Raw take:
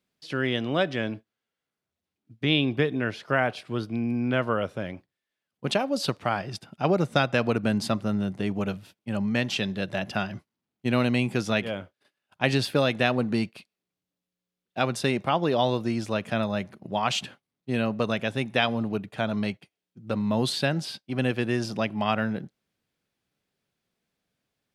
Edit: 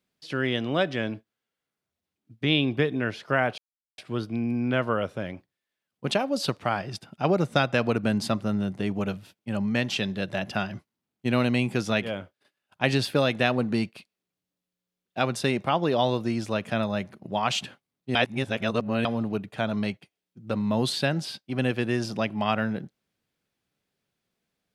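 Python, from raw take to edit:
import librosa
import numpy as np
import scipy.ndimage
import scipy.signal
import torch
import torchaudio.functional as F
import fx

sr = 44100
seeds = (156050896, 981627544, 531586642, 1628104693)

y = fx.edit(x, sr, fx.insert_silence(at_s=3.58, length_s=0.4),
    fx.reverse_span(start_s=17.75, length_s=0.9), tone=tone)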